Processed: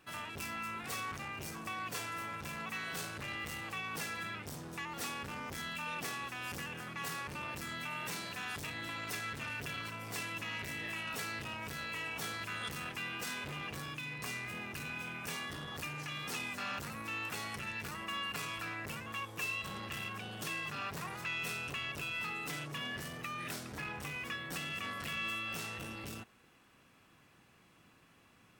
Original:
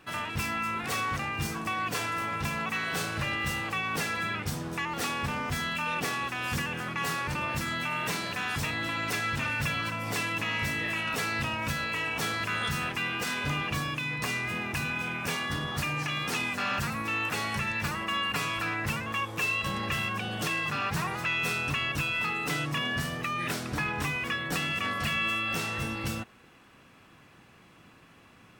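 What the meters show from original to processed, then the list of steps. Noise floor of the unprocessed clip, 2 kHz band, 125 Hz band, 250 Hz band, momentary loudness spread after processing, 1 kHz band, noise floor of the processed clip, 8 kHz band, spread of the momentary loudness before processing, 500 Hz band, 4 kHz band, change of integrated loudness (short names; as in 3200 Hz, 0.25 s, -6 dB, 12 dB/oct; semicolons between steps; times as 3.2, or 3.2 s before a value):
-56 dBFS, -9.5 dB, -12.0 dB, -11.0 dB, 4 LU, -10.0 dB, -65 dBFS, -7.0 dB, 3 LU, -10.0 dB, -8.5 dB, -9.5 dB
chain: high shelf 5600 Hz +6.5 dB; core saturation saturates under 970 Hz; gain -9 dB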